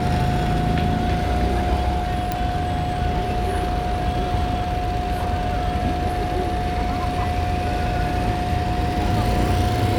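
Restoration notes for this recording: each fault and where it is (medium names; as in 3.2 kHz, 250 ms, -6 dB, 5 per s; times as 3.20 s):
whine 720 Hz -25 dBFS
2.32 s: pop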